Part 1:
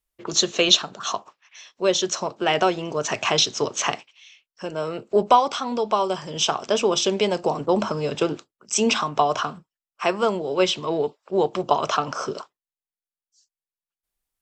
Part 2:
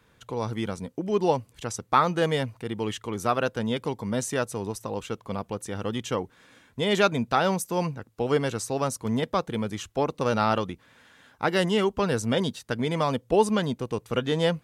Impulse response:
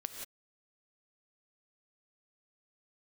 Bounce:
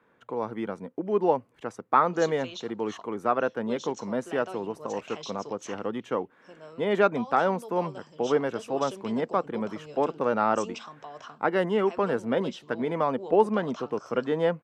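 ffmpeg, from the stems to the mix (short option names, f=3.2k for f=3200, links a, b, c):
-filter_complex "[0:a]alimiter=limit=-10.5dB:level=0:latency=1:release=173,adelay=1850,volume=-19dB[a];[1:a]acrossover=split=190 2100:gain=0.0891 1 0.1[b][c][d];[b][c][d]amix=inputs=3:normalize=0,volume=0.5dB[e];[a][e]amix=inputs=2:normalize=0"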